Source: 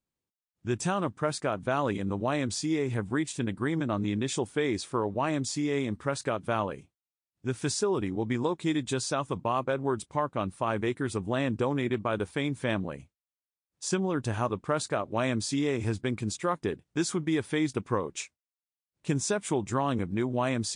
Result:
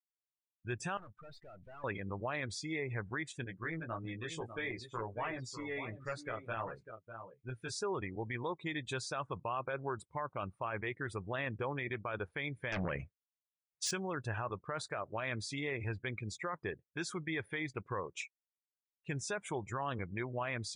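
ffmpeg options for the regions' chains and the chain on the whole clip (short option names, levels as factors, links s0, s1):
-filter_complex "[0:a]asettb=1/sr,asplit=3[s0][s1][s2];[s0]atrim=end=0.974[s3];[s1]atrim=start=0.97:end=1.84,asetpts=PTS-STARTPTS,afade=t=in:d=0.004:c=qsin,afade=t=out:st=0.866:d=0.004:c=qsin,equalizer=f=3500:w=1.2:g=6.5,aeval=exprs='(tanh(141*val(0)+0.5)-tanh(0.5))/141':c=same[s4];[s2]atrim=start=1.836[s5];[s3][s4]acrossfade=d=0.004:c1=hsin:c2=qsin[s6];[s6][s5]acrossfade=d=0.004:c1=qsin:c2=hsin,asettb=1/sr,asplit=3[s7][s8][s9];[s7]atrim=end=3.444[s10];[s8]atrim=start=3.44:end=7.72,asetpts=PTS-STARTPTS,afade=t=in:d=0.004:c=qsin,afade=t=out:st=4.276:d=0.004:c=qsin,flanger=delay=16:depth=2.3:speed=1.5,aeval=exprs='clip(val(0),-1,0.0422)':c=same,aecho=1:1:598:0.335,atrim=end_sample=188748[s11];[s9]atrim=start=7.716[s12];[s10][s11]acrossfade=d=0.004:c1=hsin:c2=qsin[s13];[s13][s12]acrossfade=d=0.004:c1=qsin:c2=hsin,asettb=1/sr,asplit=3[s14][s15][s16];[s14]atrim=end=12.724[s17];[s15]atrim=start=12.72:end=13.91,asetpts=PTS-STARTPTS,afade=t=in:d=0.004:c=qsin,afade=t=out:st=1.186:d=0.004:c=qsin,bandreject=f=860:w=6.7,aeval=exprs='0.126*sin(PI/2*2.82*val(0)/0.126)':c=same[s18];[s16]atrim=start=13.906[s19];[s17][s18]acrossfade=d=0.004:c1=hsin:c2=qsin[s20];[s20][s19]acrossfade=d=0.004:c1=qsin:c2=hsin,afftdn=nr=26:nf=-42,equalizer=f=250:t=o:w=1:g=-10,equalizer=f=2000:t=o:w=1:g=9,equalizer=f=8000:t=o:w=1:g=-6,alimiter=limit=0.0794:level=0:latency=1:release=13,volume=0.501"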